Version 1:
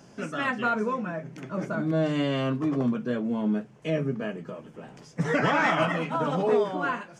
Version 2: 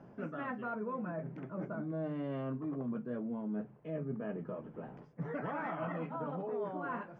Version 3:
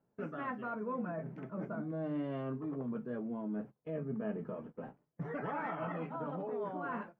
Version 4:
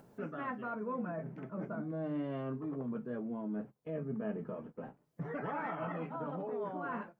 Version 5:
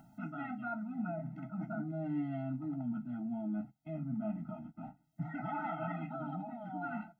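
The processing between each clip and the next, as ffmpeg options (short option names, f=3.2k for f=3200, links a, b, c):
-af "lowpass=1.3k,areverse,acompressor=threshold=-34dB:ratio=6,areverse,volume=-2dB"
-af "flanger=delay=2.2:depth=2.4:regen=72:speed=0.35:shape=sinusoidal,agate=range=-23dB:threshold=-51dB:ratio=16:detection=peak,volume=4.5dB"
-af "acompressor=mode=upward:threshold=-45dB:ratio=2.5"
-af "afftfilt=real='re*eq(mod(floor(b*sr/1024/310),2),0)':imag='im*eq(mod(floor(b*sr/1024/310),2),0)':win_size=1024:overlap=0.75,volume=2dB"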